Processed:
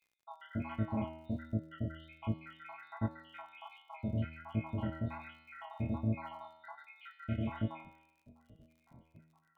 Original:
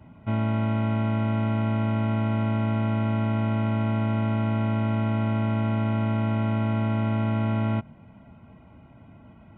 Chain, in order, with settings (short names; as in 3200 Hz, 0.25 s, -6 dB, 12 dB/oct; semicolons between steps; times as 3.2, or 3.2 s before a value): random spectral dropouts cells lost 80%; chorus 1.3 Hz, delay 18 ms, depth 8 ms; resonator 80 Hz, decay 0.89 s, harmonics all, mix 80%; crackle 67/s -67 dBFS; gain +7.5 dB